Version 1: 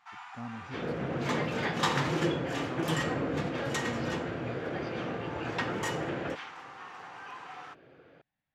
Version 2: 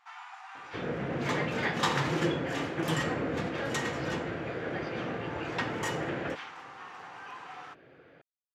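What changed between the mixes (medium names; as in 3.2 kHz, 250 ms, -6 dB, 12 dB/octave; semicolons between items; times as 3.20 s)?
speech: muted; second sound: add peaking EQ 1.9 kHz +4 dB 0.63 oct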